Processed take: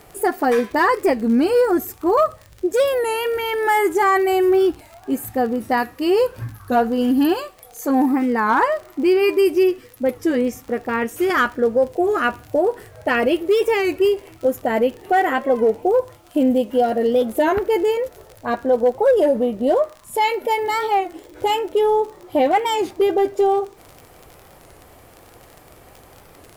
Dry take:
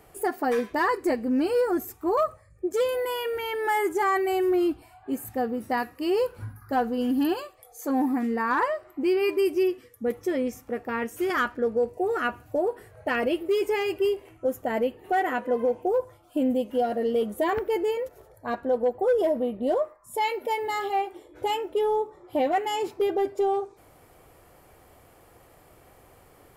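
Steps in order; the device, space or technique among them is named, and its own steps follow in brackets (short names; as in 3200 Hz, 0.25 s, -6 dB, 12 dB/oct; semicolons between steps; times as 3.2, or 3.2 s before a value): warped LP (record warp 33 1/3 rpm, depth 160 cents; crackle 40/s -37 dBFS; pink noise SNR 38 dB); gain +7.5 dB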